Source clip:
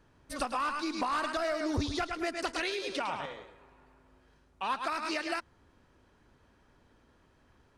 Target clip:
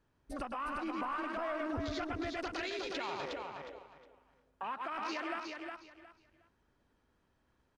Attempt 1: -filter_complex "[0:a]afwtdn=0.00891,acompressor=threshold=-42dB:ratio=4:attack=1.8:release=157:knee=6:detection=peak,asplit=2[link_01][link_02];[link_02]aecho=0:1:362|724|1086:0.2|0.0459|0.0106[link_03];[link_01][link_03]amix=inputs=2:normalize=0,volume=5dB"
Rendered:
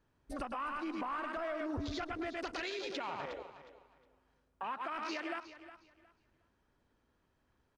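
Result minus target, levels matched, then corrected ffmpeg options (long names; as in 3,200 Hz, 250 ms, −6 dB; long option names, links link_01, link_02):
echo-to-direct −9.5 dB
-filter_complex "[0:a]afwtdn=0.00891,acompressor=threshold=-42dB:ratio=4:attack=1.8:release=157:knee=6:detection=peak,asplit=2[link_01][link_02];[link_02]aecho=0:1:362|724|1086:0.596|0.137|0.0315[link_03];[link_01][link_03]amix=inputs=2:normalize=0,volume=5dB"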